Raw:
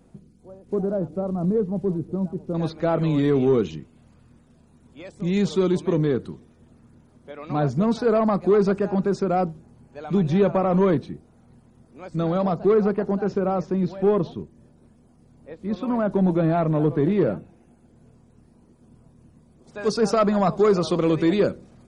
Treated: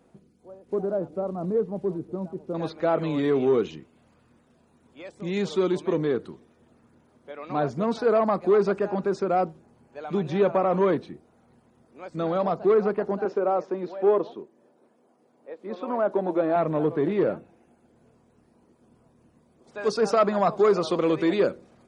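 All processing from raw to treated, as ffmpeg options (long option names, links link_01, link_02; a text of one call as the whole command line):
ffmpeg -i in.wav -filter_complex "[0:a]asettb=1/sr,asplit=3[link_01][link_02][link_03];[link_01]atrim=end=13.254[link_04];[link_02]atrim=start=13.25:end=16.56,asetpts=PTS-STARTPTS,afade=type=in:duration=0.004:curve=qsin,afade=type=out:start_time=3.306:duration=0.004:curve=qsin,highpass=360,tiltshelf=frequency=1200:gain=4[link_05];[link_03]atrim=start=16.556[link_06];[link_04][link_05]acrossfade=duration=0.004:curve1=hsin:curve2=qsin[link_07];[link_07][link_06]acrossfade=duration=0.004:curve1=qsin:curve2=hsin,highpass=42,bass=frequency=250:gain=-11,treble=frequency=4000:gain=-5" out.wav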